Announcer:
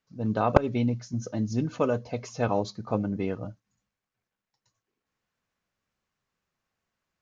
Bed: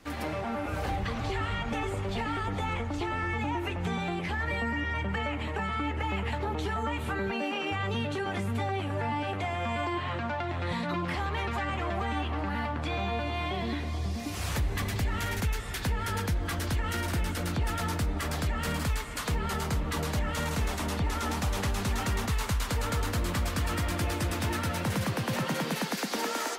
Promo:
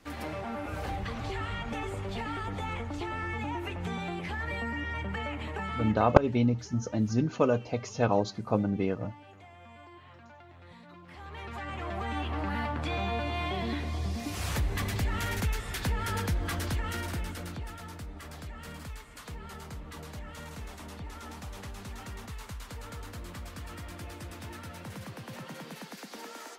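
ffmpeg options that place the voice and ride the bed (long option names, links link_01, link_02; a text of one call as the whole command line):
ffmpeg -i stem1.wav -i stem2.wav -filter_complex "[0:a]adelay=5600,volume=0.5dB[link_01];[1:a]volume=16dB,afade=type=out:start_time=5.82:duration=0.36:silence=0.149624,afade=type=in:start_time=11.06:duration=1.41:silence=0.105925,afade=type=out:start_time=16.49:duration=1.29:silence=0.251189[link_02];[link_01][link_02]amix=inputs=2:normalize=0" out.wav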